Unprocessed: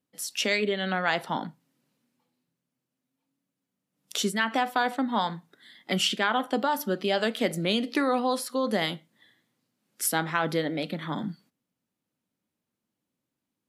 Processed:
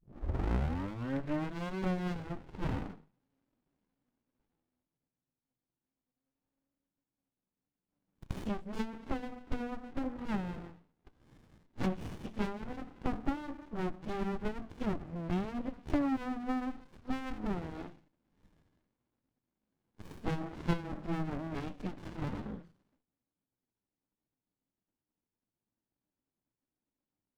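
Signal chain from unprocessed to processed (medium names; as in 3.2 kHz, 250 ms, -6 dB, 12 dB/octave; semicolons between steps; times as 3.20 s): tape start-up on the opening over 0.89 s; tone controls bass -7 dB, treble -15 dB; low-pass that closes with the level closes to 540 Hz, closed at -22 dBFS; plain phase-vocoder stretch 2×; sliding maximum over 65 samples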